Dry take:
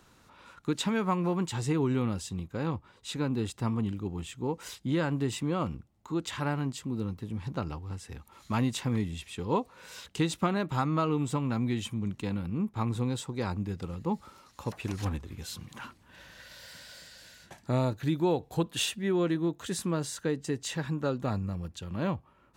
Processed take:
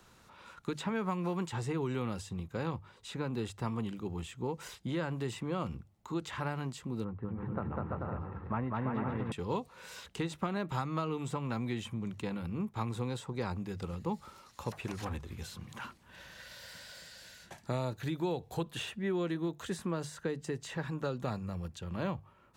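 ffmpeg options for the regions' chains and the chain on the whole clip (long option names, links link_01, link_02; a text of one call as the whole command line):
ffmpeg -i in.wav -filter_complex "[0:a]asettb=1/sr,asplit=3[link_01][link_02][link_03];[link_01]atrim=end=7.044[link_04];[link_02]atrim=start=7.04:end=9.32,asetpts=PTS-STARTPTS,afade=type=in:duration=0.004:curve=qsin,afade=type=out:start_time=2.276:duration=0.004:curve=qsin,lowpass=frequency=1700:width=0.5412,lowpass=frequency=1700:width=1.3066,aecho=1:1:200|340|438|506.6|554.6:0.794|0.631|0.501|0.398|0.316,atrim=end_sample=100548[link_05];[link_03]atrim=start=9.316[link_06];[link_04][link_05]acrossfade=duration=0.004:curve1=hsin:curve2=qsin[link_07];[link_07][link_06]acrossfade=duration=0.004:curve1=qsin:curve2=hsin,acrossover=split=320|2300[link_08][link_09][link_10];[link_08]acompressor=threshold=-35dB:ratio=4[link_11];[link_09]acompressor=threshold=-34dB:ratio=4[link_12];[link_10]acompressor=threshold=-49dB:ratio=4[link_13];[link_11][link_12][link_13]amix=inputs=3:normalize=0,equalizer=frequency=280:width_type=o:width=0.32:gain=-6,bandreject=frequency=50:width_type=h:width=6,bandreject=frequency=100:width_type=h:width=6,bandreject=frequency=150:width_type=h:width=6" out.wav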